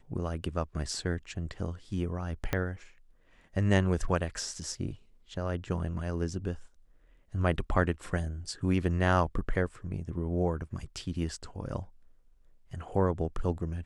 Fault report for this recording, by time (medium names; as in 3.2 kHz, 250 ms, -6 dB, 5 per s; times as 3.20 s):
2.53 s: pop -14 dBFS